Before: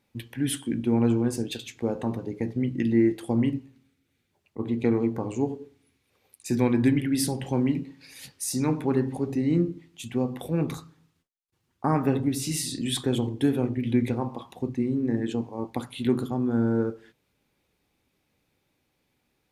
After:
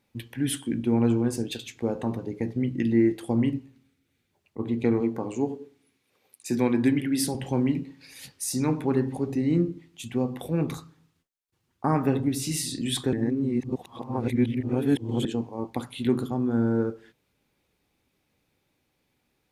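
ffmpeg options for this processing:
-filter_complex "[0:a]asettb=1/sr,asplit=3[s0][s1][s2];[s0]atrim=end=5.004[s3];[s1]atrim=start=5:end=7.35,asetpts=PTS-STARTPTS,afade=t=in:d=0.004:c=qsin,afade=t=out:st=2.346:d=0.004:c=qsin,highpass=150[s4];[s2]atrim=start=7.346[s5];[s3][s4]acrossfade=d=0.004:c1=hsin:c2=qsin[s6];[s6][s5]acrossfade=d=0.004:c1=qsin:c2=hsin,asplit=3[s7][s8][s9];[s7]atrim=end=13.132[s10];[s8]atrim=start=13.128:end=15.252,asetpts=PTS-STARTPTS,areverse[s11];[s9]atrim=start=15.248[s12];[s10][s11]acrossfade=d=0.004:c1=hsin:c2=hsin[s13];[s13][s12]acrossfade=d=0.004:c1=hsin:c2=hsin"

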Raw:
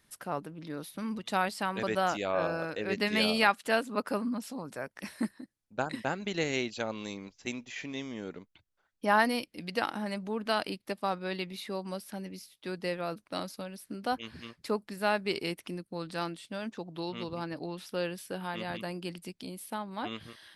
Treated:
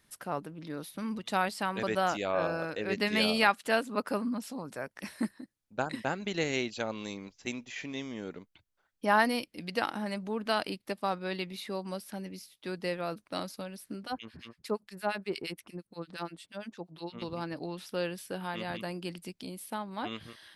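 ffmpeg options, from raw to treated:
-filter_complex "[0:a]asettb=1/sr,asplit=3[s0][s1][s2];[s0]atrim=end=14.034[s3];[s1]atrim=start=14.03:end=17.22,asetpts=PTS-STARTPTS,afade=t=in:d=0.004:c=qsin,afade=t=out:st=3.186:d=0.004:c=qsin,acrossover=split=1400[s4][s5];[s4]aeval=exprs='val(0)*(1-1/2+1/2*cos(2*PI*8.6*n/s))':c=same[s6];[s5]aeval=exprs='val(0)*(1-1/2-1/2*cos(2*PI*8.6*n/s))':c=same[s7];[s6][s7]amix=inputs=2:normalize=0[s8];[s2]atrim=start=17.216[s9];[s3][s8]acrossfade=d=0.004:c1=hsin:c2=qsin[s10];[s10][s9]acrossfade=d=0.004:c1=qsin:c2=hsin"

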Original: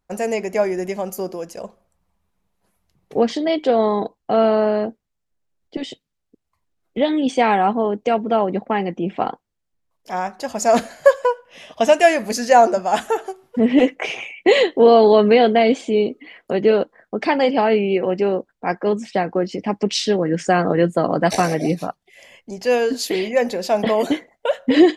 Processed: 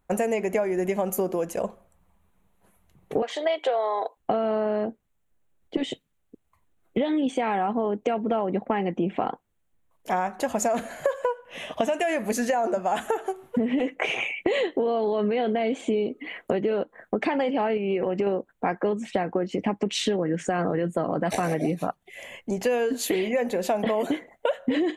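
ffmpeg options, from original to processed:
-filter_complex "[0:a]asettb=1/sr,asplit=3[s0][s1][s2];[s0]atrim=end=3.224[s3];[s1]atrim=start=3.22:end=4.17,asetpts=PTS-STARTPTS,afade=t=in:d=0.004:c=qsin,afade=t=out:st=0.946:d=0.004:c=qsin,highpass=f=530:w=0.5412,highpass=f=530:w=1.3066[s4];[s2]atrim=start=4.166[s5];[s3][s4]acrossfade=d=0.004:c1=hsin:c2=qsin[s6];[s6][s5]acrossfade=d=0.004:c1=qsin:c2=hsin,asettb=1/sr,asplit=3[s7][s8][s9];[s7]atrim=end=17.774[s10];[s8]atrim=start=17.77:end=18.27,asetpts=PTS-STARTPTS,afade=t=in:d=0.004:c=qsin,afade=t=out:st=0.496:d=0.004:c=qsin,acompressor=threshold=0.0891:ratio=3:attack=3.2:release=140:knee=1:detection=peak[s11];[s9]atrim=start=18.266[s12];[s10][s11]acrossfade=d=0.004:c1=hsin:c2=qsin[s13];[s13][s12]acrossfade=d=0.004:c1=qsin:c2=hsin,equalizer=f=5000:t=o:w=0.51:g=-14.5,alimiter=limit=0.299:level=0:latency=1:release=24,acompressor=threshold=0.0447:ratio=10,volume=1.88"

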